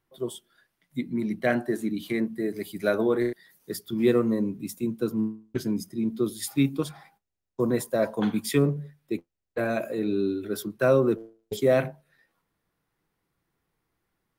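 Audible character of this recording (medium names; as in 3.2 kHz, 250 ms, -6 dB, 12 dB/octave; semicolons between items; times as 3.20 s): noise floor -80 dBFS; spectral tilt -6.0 dB/octave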